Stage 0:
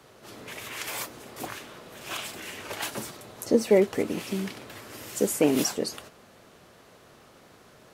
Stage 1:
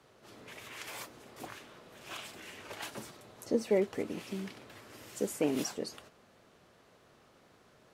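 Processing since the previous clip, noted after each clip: high shelf 9500 Hz -7.5 dB; gain -8.5 dB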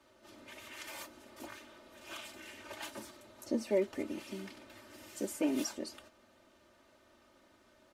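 comb 3.3 ms, depth 98%; gain -5 dB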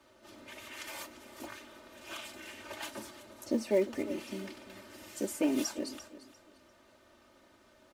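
in parallel at -9 dB: short-mantissa float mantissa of 2-bit; on the sum: feedback echo 0.346 s, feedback 25%, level -15.5 dB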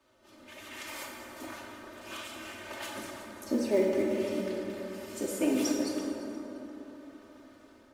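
AGC gain up to 6.5 dB; plate-style reverb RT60 3.8 s, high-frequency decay 0.35×, pre-delay 0 ms, DRR -1.5 dB; gain -6.5 dB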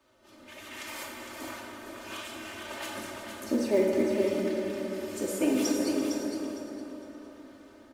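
feedback echo 0.458 s, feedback 23%, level -6.5 dB; gain +1.5 dB

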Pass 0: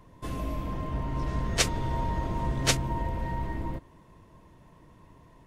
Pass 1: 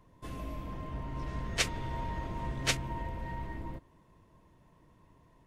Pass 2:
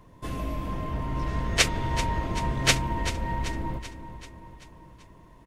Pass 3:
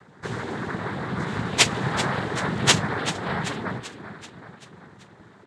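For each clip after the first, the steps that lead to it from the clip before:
dynamic EQ 2300 Hz, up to +6 dB, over -46 dBFS, Q 0.96; gain -7.5 dB
feedback echo 0.386 s, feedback 55%, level -12 dB; gain +8.5 dB
noise vocoder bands 6; gain +4.5 dB

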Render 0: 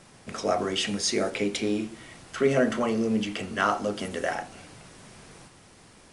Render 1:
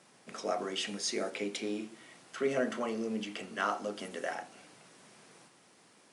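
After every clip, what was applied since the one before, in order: Bessel high-pass 220 Hz, order 4; gain -7.5 dB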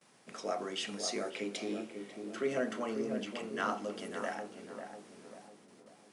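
gate with hold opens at -52 dBFS; on a send: darkening echo 0.545 s, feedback 52%, low-pass 880 Hz, level -5 dB; on the sum: gain -2.5 dB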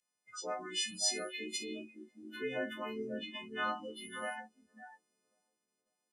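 frequency quantiser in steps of 3 st; spectral noise reduction 26 dB; gain -4.5 dB

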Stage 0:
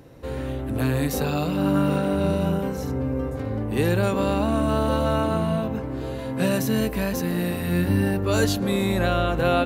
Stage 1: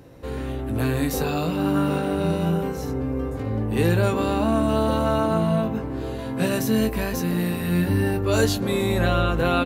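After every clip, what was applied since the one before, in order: doubler 18 ms -7.5 dB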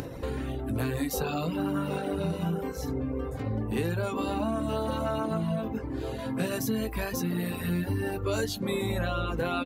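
upward compressor, threshold -25 dBFS; reverb removal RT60 1.1 s; compressor, threshold -24 dBFS, peak gain reduction 8.5 dB; gain -1.5 dB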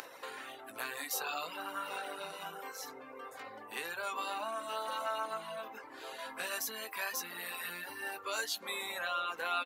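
Chebyshev high-pass 1100 Hz, order 2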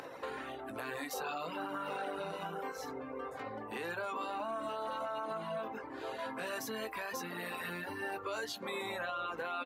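tilt -3.5 dB/oct; limiter -33 dBFS, peak gain reduction 9 dB; gain +3.5 dB

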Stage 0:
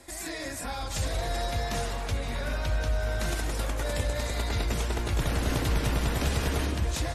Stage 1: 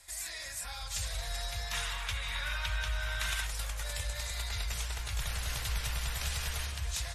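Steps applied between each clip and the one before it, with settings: spectral gain 1.72–3.47, 850–3900 Hz +7 dB; passive tone stack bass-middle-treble 10-0-10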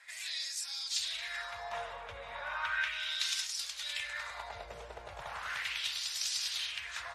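LFO band-pass sine 0.36 Hz 510–5300 Hz; gain +9 dB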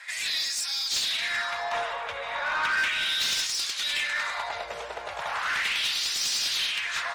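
overdrive pedal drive 20 dB, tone 6300 Hz, clips at -17.5 dBFS

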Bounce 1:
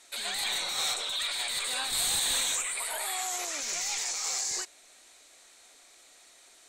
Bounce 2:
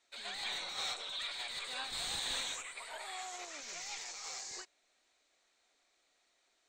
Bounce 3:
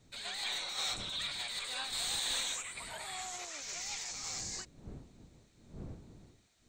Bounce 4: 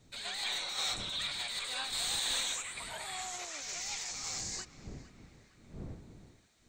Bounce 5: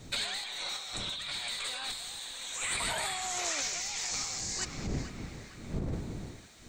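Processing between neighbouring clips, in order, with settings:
running mean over 4 samples; upward expander 1.5:1, over -51 dBFS; gain -5.5 dB
wind noise 210 Hz -55 dBFS; high shelf 5200 Hz +7.5 dB
narrowing echo 0.46 s, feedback 62%, band-pass 1600 Hz, level -15.5 dB; gain +1.5 dB
negative-ratio compressor -45 dBFS, ratio -1; gain +8.5 dB

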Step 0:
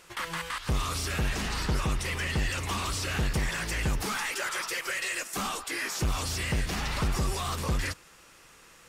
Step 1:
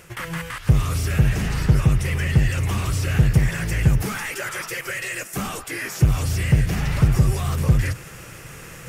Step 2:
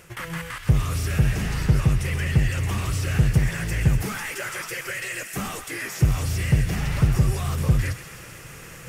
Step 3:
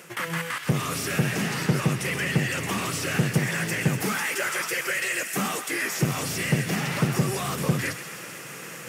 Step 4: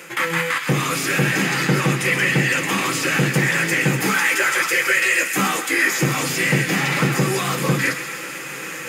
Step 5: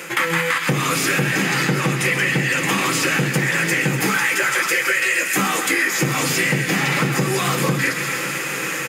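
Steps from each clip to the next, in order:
ten-band EQ 125 Hz +12 dB, 250 Hz -4 dB, 1000 Hz -8 dB, 4000 Hz -10 dB, 8000 Hz -4 dB; reverse; upward compressor, threshold -35 dBFS; reverse; gain +7.5 dB
thin delay 0.129 s, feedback 74%, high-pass 1700 Hz, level -10 dB; gain -2.5 dB
HPF 170 Hz 24 dB/oct; gain +4 dB
notch 5600 Hz, Q 14; reverb RT60 0.25 s, pre-delay 3 ms, DRR 3.5 dB; gain +5 dB
feedback echo 0.282 s, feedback 59%, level -21 dB; compressor, threshold -22 dBFS, peak gain reduction 9 dB; gain +6 dB

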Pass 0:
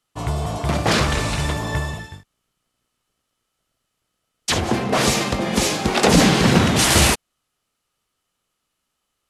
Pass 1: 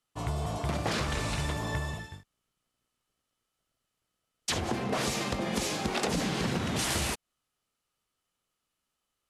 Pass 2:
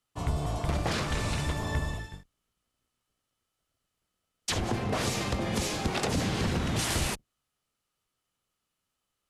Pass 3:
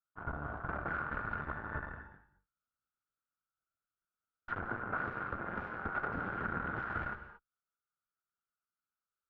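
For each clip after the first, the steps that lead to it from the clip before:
compressor 10:1, threshold -19 dBFS, peak gain reduction 10.5 dB; gain -7.5 dB
octaver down 1 oct, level -1 dB
added harmonics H 6 -15 dB, 7 -21 dB, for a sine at -16 dBFS; ladder low-pass 1500 Hz, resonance 85%; non-linear reverb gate 0.25 s rising, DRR 11 dB

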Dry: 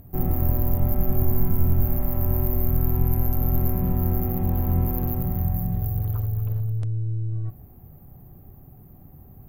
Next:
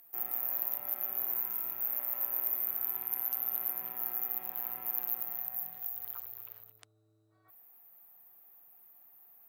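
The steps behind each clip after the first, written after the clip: Bessel high-pass 2000 Hz, order 2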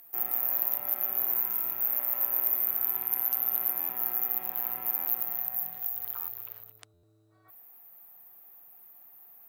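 stuck buffer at 3.79/4.96/6.18/6.93, samples 512, times 8; gain +5.5 dB

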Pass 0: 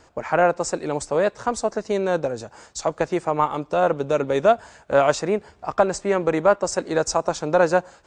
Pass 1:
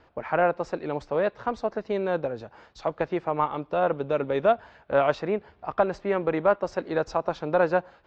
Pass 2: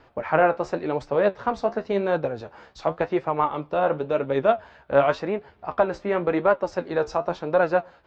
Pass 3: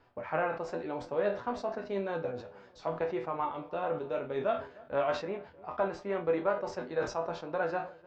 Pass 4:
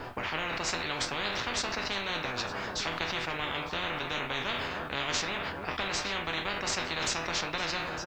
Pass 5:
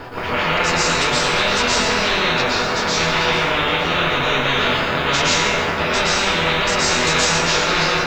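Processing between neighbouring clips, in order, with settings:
LPF 3800 Hz 24 dB/oct; gain -4.5 dB
vocal rider 2 s; flange 0.92 Hz, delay 6.7 ms, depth 9.1 ms, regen +56%; gain +6 dB
resonator bank E2 minor, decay 0.23 s; darkening echo 0.304 s, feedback 59%, low-pass 1400 Hz, level -22 dB; sustainer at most 130 dB/s
echo 0.906 s -20.5 dB; spectral compressor 10:1; gain +2.5 dB
reverb RT60 1.4 s, pre-delay 0.108 s, DRR -8.5 dB; gain +6.5 dB

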